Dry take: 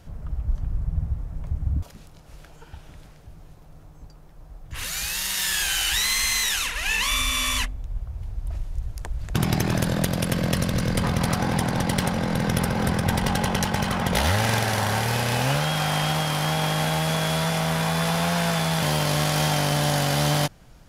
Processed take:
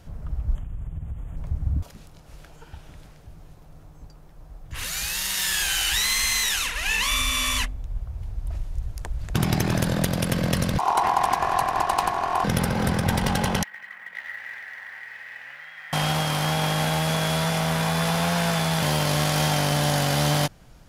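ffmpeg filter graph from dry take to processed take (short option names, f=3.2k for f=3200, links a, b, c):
-filter_complex "[0:a]asettb=1/sr,asplit=3[a][b][c];[a]atrim=end=0.554[d];[b]atrim=start=0.55:end=1.37,asetpts=PTS-STARTPTS,afade=t=in:d=0.004:c=qsin,afade=t=out:st=0.816:d=0.004:c=qsin,equalizer=f=4.3k:w=0.82:g=10,acompressor=threshold=-29dB:ratio=4:attack=3.2:release=140:knee=1:detection=peak,asuperstop=centerf=4800:order=8:qfactor=1.4[e];[c]atrim=start=1.366[f];[d][e]acrossfade=d=0.004:c1=hsin:c2=qsin[g];[g][f]acrossfade=d=0.004:c1=qsin:c2=hsin,asettb=1/sr,asplit=3[h][i][j];[h]atrim=end=10.784[k];[i]atrim=start=10.78:end=12.44,asetpts=PTS-STARTPTS,afade=t=in:d=0.004:c=qsin,afade=t=out:st=1.656:d=0.004:c=qsin,agate=range=-33dB:threshold=-23dB:ratio=3:release=100:detection=peak,lowshelf=f=160:g=9.5,aeval=exprs='val(0)*sin(2*PI*900*n/s)':c=same[l];[j]atrim=start=12.436[m];[k][l]acrossfade=d=0.004:c1=hsin:c2=qsin[n];[n][m]acrossfade=d=0.004:c1=qsin:c2=hsin,asettb=1/sr,asplit=3[o][p][q];[o]atrim=end=13.634[r];[p]atrim=start=13.63:end=15.93,asetpts=PTS-STARTPTS,afade=t=in:d=0.004:c=qsin,afade=t=out:st=2.296:d=0.004:c=qsin,bandpass=f=1.9k:t=q:w=12,acrusher=bits=7:mode=log:mix=0:aa=0.000001[s];[q]atrim=start=15.926[t];[r][s]acrossfade=d=0.004:c1=hsin:c2=qsin[u];[u][t]acrossfade=d=0.004:c1=qsin:c2=hsin"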